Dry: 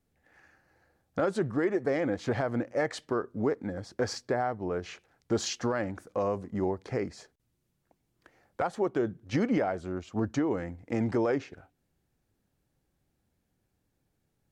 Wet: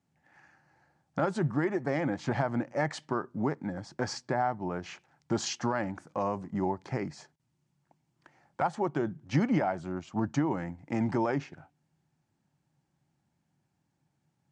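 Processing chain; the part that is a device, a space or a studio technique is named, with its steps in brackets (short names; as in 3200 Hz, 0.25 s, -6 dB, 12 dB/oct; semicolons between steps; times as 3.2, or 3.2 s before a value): car door speaker (speaker cabinet 110–8500 Hz, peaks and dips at 150 Hz +10 dB, 460 Hz -10 dB, 890 Hz +7 dB, 3800 Hz -3 dB)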